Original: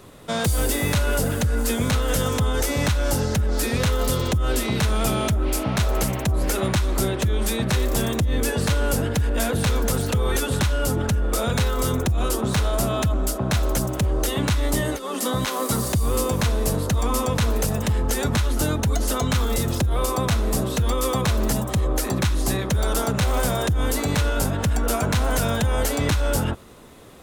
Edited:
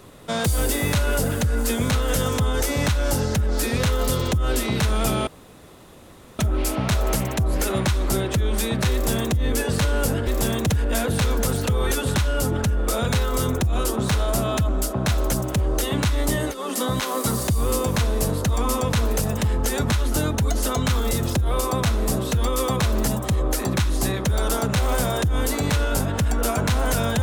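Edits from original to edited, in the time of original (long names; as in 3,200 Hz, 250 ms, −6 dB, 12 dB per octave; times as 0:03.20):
0:05.27: splice in room tone 1.12 s
0:07.81–0:08.24: duplicate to 0:09.15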